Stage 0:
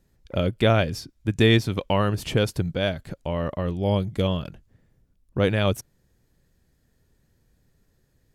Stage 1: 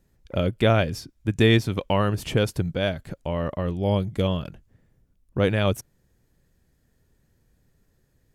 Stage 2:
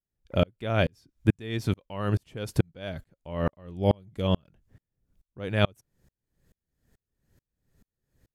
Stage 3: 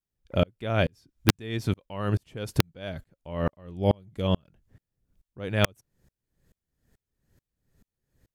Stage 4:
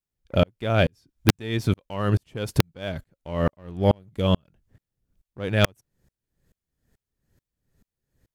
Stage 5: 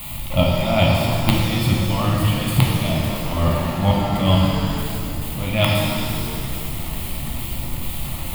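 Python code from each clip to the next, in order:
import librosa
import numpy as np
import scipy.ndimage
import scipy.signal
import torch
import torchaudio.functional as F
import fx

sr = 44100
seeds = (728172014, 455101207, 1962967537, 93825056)

y1 = fx.peak_eq(x, sr, hz=4300.0, db=-2.5, octaves=0.77)
y2 = fx.tremolo_decay(y1, sr, direction='swelling', hz=2.3, depth_db=39)
y2 = F.gain(torch.from_numpy(y2), 4.5).numpy()
y3 = (np.mod(10.0 ** (7.5 / 20.0) * y2 + 1.0, 2.0) - 1.0) / 10.0 ** (7.5 / 20.0)
y4 = fx.leveller(y3, sr, passes=1)
y4 = F.gain(torch.from_numpy(y4), 1.0).numpy()
y5 = y4 + 0.5 * 10.0 ** (-26.5 / 20.0) * np.sign(y4)
y5 = fx.fixed_phaser(y5, sr, hz=1600.0, stages=6)
y5 = fx.rev_shimmer(y5, sr, seeds[0], rt60_s=2.2, semitones=7, shimmer_db=-8, drr_db=-3.0)
y5 = F.gain(torch.from_numpy(y5), 3.0).numpy()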